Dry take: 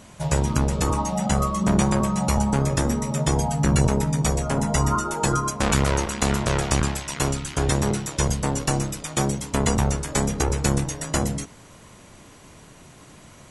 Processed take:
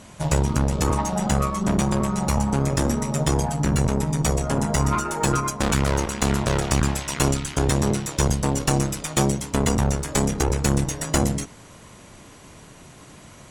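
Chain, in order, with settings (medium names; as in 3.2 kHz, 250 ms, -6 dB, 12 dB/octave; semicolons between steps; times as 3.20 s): Chebyshev shaper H 8 -23 dB, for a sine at -6 dBFS; gain riding 0.5 s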